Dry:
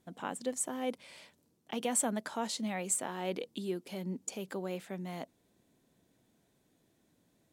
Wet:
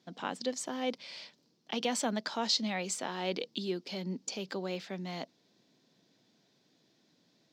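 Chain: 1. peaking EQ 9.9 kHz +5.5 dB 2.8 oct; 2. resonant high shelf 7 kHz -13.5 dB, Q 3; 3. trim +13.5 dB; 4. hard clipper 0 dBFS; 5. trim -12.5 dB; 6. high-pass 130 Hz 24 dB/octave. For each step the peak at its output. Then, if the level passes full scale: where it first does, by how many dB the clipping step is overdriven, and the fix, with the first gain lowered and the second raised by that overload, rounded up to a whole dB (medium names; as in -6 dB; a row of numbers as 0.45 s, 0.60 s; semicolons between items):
-10.0 dBFS, -18.0 dBFS, -4.5 dBFS, -4.5 dBFS, -17.0 dBFS, -17.5 dBFS; nothing clips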